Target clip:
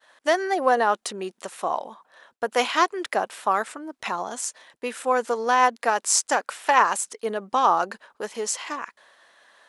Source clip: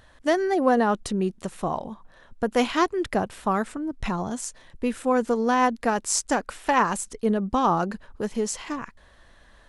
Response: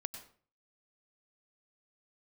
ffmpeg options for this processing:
-af "highpass=580,agate=range=-33dB:threshold=-56dB:ratio=3:detection=peak,volume=4dB"

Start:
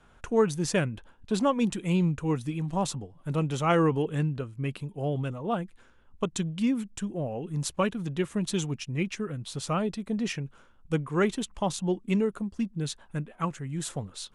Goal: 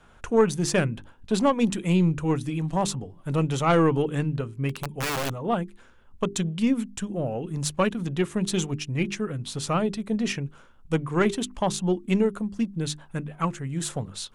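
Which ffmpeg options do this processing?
ffmpeg -i in.wav -filter_complex "[0:a]asplit=3[link_01][link_02][link_03];[link_01]afade=type=out:start_time=4.69:duration=0.02[link_04];[link_02]aeval=exprs='(mod(22.4*val(0)+1,2)-1)/22.4':channel_layout=same,afade=type=in:start_time=4.69:duration=0.02,afade=type=out:start_time=5.31:duration=0.02[link_05];[link_03]afade=type=in:start_time=5.31:duration=0.02[link_06];[link_04][link_05][link_06]amix=inputs=3:normalize=0,aeval=exprs='(tanh(5.01*val(0)+0.3)-tanh(0.3))/5.01':channel_layout=same,bandreject=frequency=50:width_type=h:width=6,bandreject=frequency=100:width_type=h:width=6,bandreject=frequency=150:width_type=h:width=6,bandreject=frequency=200:width_type=h:width=6,bandreject=frequency=250:width_type=h:width=6,bandreject=frequency=300:width_type=h:width=6,bandreject=frequency=350:width_type=h:width=6,bandreject=frequency=400:width_type=h:width=6,volume=5dB" out.wav

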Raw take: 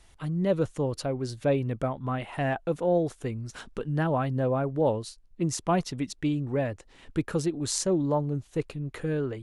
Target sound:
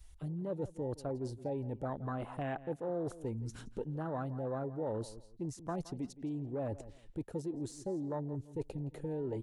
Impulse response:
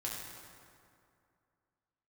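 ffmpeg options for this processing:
-filter_complex "[0:a]asplit=2[link_01][link_02];[link_02]asoftclip=type=tanh:threshold=-20.5dB,volume=-4dB[link_03];[link_01][link_03]amix=inputs=2:normalize=0,adynamicequalizer=threshold=0.0251:dfrequency=350:dqfactor=1.3:tfrequency=350:tqfactor=1.3:attack=5:release=100:ratio=0.375:range=1.5:mode=boostabove:tftype=bell,areverse,acompressor=threshold=-32dB:ratio=8,areverse,afwtdn=0.0126,asplit=2[link_04][link_05];[link_05]adelay=168,lowpass=frequency=5000:poles=1,volume=-18dB,asplit=2[link_06][link_07];[link_07]adelay=168,lowpass=frequency=5000:poles=1,volume=0.23[link_08];[link_04][link_06][link_08]amix=inputs=3:normalize=0,acrossover=split=570|2100[link_09][link_10][link_11];[link_09]acompressor=threshold=-37dB:ratio=4[link_12];[link_10]acompressor=threshold=-40dB:ratio=4[link_13];[link_11]acompressor=threshold=-58dB:ratio=4[link_14];[link_12][link_13][link_14]amix=inputs=3:normalize=0,highshelf=frequency=5300:gain=11.5"

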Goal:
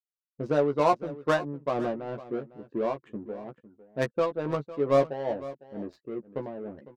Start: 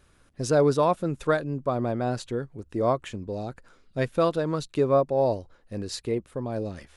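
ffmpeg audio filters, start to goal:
ffmpeg -i in.wav -filter_complex "[0:a]highpass=190,afftfilt=real='re*gte(hypot(re,im),0.00794)':imag='im*gte(hypot(re,im),0.00794)':win_size=1024:overlap=0.75,tremolo=f=2.2:d=0.63,adynamicsmooth=sensitivity=3:basefreq=510,asplit=2[link_01][link_02];[link_02]adelay=14,volume=-5dB[link_03];[link_01][link_03]amix=inputs=2:normalize=0,asplit=2[link_04][link_05];[link_05]aecho=0:1:504:0.15[link_06];[link_04][link_06]amix=inputs=2:normalize=0" out.wav

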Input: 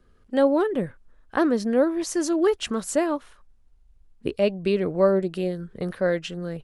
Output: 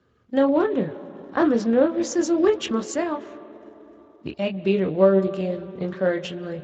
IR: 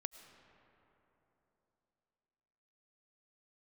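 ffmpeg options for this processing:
-filter_complex "[0:a]asettb=1/sr,asplit=3[link_01][link_02][link_03];[link_01]atrim=end=2.944[link_04];[link_02]atrim=start=2.94:end=4.57,asetpts=PTS-STARTPTS,afade=type=in:duration=0.004:curve=qsin,afade=type=out:start_time=1.626:duration=0.004:curve=qsin,equalizer=frequency=450:width_type=o:width=0.6:gain=-14.5[link_05];[link_03]atrim=start=4.566[link_06];[link_04][link_05]acrossfade=duration=0.004:curve1=hsin:curve2=qsin[link_07];[link_07][link_06]acrossfade=duration=0.004:curve1=qsin:curve2=hsin,asplit=2[link_08][link_09];[link_09]lowpass=frequency=3700:width=0.5412,lowpass=frequency=3700:width=1.3066[link_10];[1:a]atrim=start_sample=2205,asetrate=39690,aresample=44100,adelay=26[link_11];[link_10][link_11]afir=irnorm=-1:irlink=0,volume=-2dB[link_12];[link_08][link_12]amix=inputs=2:normalize=0" -ar 16000 -c:a libspeex -b:a 17k

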